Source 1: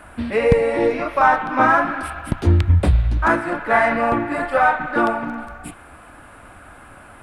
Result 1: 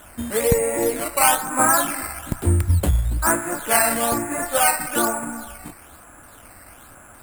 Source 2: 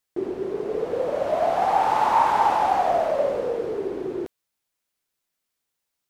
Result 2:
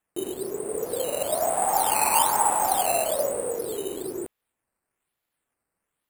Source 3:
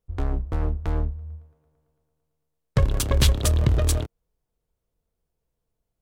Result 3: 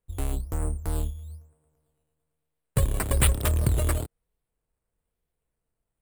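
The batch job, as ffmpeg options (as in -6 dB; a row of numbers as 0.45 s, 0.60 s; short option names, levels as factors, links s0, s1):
-af "acrusher=samples=9:mix=1:aa=0.000001:lfo=1:lforange=9:lforate=1.1,highshelf=f=7100:t=q:w=3:g=7.5,volume=0.668"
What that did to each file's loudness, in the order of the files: -1.5 LU, -1.5 LU, -3.0 LU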